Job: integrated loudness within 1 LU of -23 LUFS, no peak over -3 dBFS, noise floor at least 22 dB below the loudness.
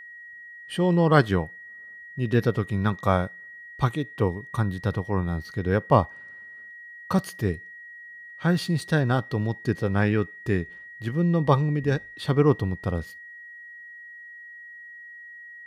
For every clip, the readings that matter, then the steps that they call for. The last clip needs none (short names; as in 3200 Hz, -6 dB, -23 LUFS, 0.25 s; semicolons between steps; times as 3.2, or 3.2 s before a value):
steady tone 1900 Hz; tone level -41 dBFS; loudness -25.0 LUFS; peak -4.0 dBFS; loudness target -23.0 LUFS
-> notch 1900 Hz, Q 30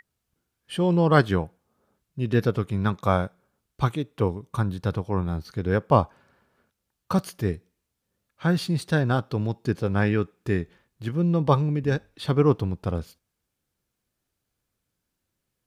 steady tone none; loudness -25.0 LUFS; peak -4.0 dBFS; loudness target -23.0 LUFS
-> gain +2 dB; limiter -3 dBFS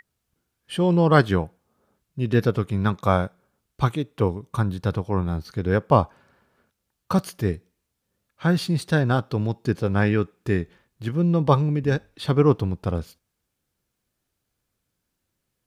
loudness -23.0 LUFS; peak -3.0 dBFS; noise floor -79 dBFS